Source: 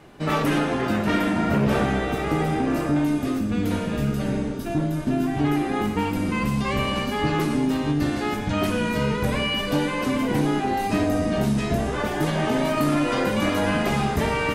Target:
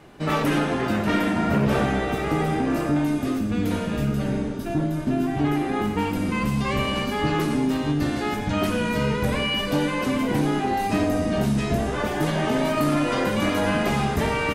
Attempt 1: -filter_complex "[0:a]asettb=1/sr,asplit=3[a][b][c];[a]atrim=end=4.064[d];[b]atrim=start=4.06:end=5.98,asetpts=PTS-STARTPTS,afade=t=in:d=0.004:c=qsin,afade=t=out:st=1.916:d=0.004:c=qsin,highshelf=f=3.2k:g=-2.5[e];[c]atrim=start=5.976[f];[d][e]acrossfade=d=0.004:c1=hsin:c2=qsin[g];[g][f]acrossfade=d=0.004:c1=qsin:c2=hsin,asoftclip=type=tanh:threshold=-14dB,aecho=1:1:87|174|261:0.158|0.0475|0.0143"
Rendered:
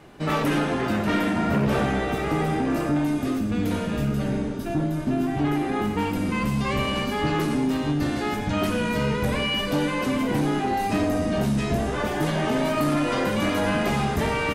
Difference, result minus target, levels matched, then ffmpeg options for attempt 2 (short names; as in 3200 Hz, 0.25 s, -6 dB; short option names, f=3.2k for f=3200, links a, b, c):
soft clip: distortion +15 dB
-filter_complex "[0:a]asettb=1/sr,asplit=3[a][b][c];[a]atrim=end=4.064[d];[b]atrim=start=4.06:end=5.98,asetpts=PTS-STARTPTS,afade=t=in:d=0.004:c=qsin,afade=t=out:st=1.916:d=0.004:c=qsin,highshelf=f=3.2k:g=-2.5[e];[c]atrim=start=5.976[f];[d][e]acrossfade=d=0.004:c1=hsin:c2=qsin[g];[g][f]acrossfade=d=0.004:c1=qsin:c2=hsin,asoftclip=type=tanh:threshold=-5.5dB,aecho=1:1:87|174|261:0.158|0.0475|0.0143"